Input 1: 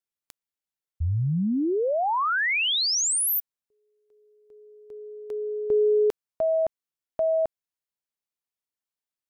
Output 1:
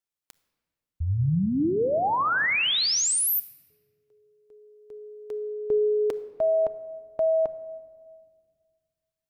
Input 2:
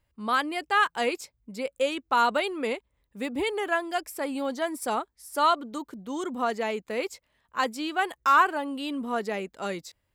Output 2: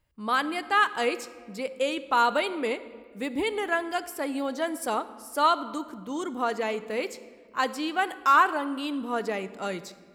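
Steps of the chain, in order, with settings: simulated room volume 2300 m³, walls mixed, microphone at 0.51 m

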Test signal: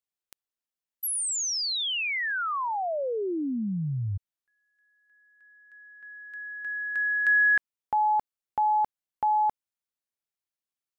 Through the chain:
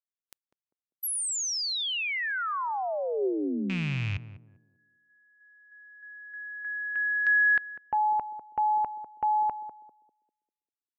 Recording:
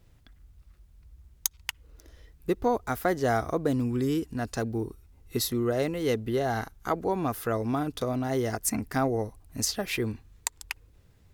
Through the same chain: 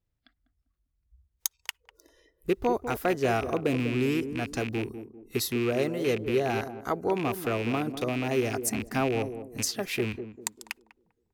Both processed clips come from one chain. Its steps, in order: rattle on loud lows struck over -33 dBFS, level -23 dBFS; spectral noise reduction 21 dB; on a send: band-passed feedback delay 198 ms, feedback 42%, band-pass 320 Hz, level -8 dB; on the sum: dynamic bell 390 Hz, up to +5 dB, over -42 dBFS, Q 6.6; trim -1.5 dB

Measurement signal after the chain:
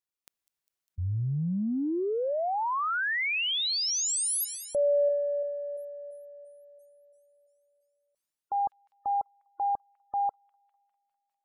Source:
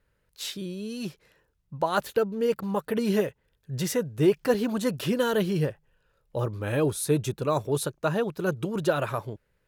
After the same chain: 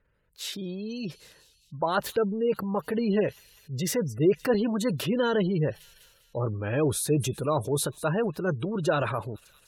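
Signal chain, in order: feedback echo behind a high-pass 201 ms, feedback 72%, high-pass 3.9 kHz, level -16 dB; spectral gate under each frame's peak -30 dB strong; transient shaper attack -2 dB, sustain +5 dB

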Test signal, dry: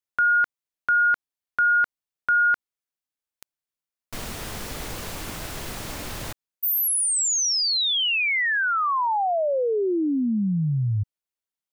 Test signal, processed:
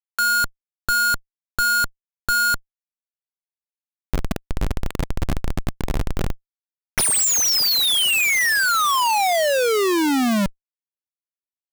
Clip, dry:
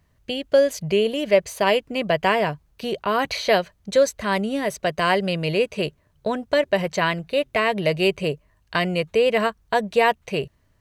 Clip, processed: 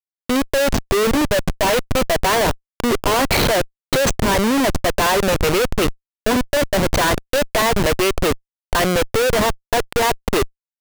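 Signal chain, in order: elliptic band-pass 240–8600 Hz, stop band 50 dB; Schmitt trigger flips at -27.5 dBFS; trim +7.5 dB

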